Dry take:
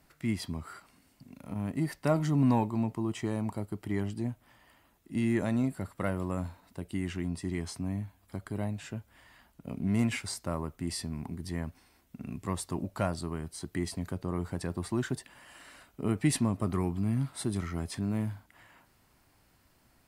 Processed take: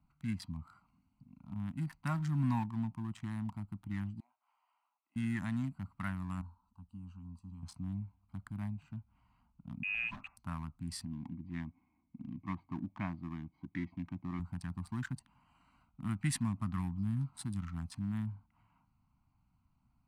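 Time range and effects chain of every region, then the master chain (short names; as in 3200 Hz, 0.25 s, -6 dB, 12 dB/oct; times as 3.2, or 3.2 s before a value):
4.2–5.16 HPF 620 Hz 24 dB/oct + compressor 3:1, threshold -56 dBFS
6.41–7.63 Chebyshev band-stop 200–890 Hz + fixed phaser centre 550 Hz, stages 6
9.83–10.37 high shelf 2100 Hz +7 dB + compressor 2:1, threshold -31 dBFS + inverted band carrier 2700 Hz
11.05–14.4 LPF 3000 Hz 24 dB/oct + notch comb 1400 Hz + small resonant body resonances 310/2200 Hz, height 12 dB, ringing for 30 ms
whole clip: Wiener smoothing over 25 samples; Chebyshev band-stop 210–1000 Hz, order 2; dynamic EQ 1700 Hz, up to +4 dB, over -57 dBFS, Q 3.3; gain -4 dB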